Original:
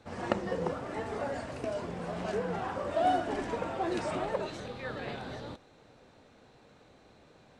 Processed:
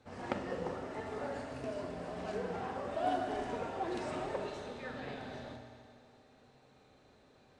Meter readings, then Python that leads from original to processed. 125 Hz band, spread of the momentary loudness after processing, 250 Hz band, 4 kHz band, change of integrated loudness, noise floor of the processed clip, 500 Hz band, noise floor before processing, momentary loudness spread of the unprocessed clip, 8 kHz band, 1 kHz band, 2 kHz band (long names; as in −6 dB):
−6.0 dB, 9 LU, −5.0 dB, −5.0 dB, −5.0 dB, −64 dBFS, −5.0 dB, −60 dBFS, 10 LU, −5.5 dB, −5.5 dB, −5.0 dB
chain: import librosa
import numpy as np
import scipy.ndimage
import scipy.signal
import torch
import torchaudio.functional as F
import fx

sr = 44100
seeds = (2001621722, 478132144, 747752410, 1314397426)

y = fx.rev_fdn(x, sr, rt60_s=2.2, lf_ratio=0.7, hf_ratio=0.95, size_ms=23.0, drr_db=2.0)
y = fx.doppler_dist(y, sr, depth_ms=0.16)
y = y * librosa.db_to_amplitude(-7.0)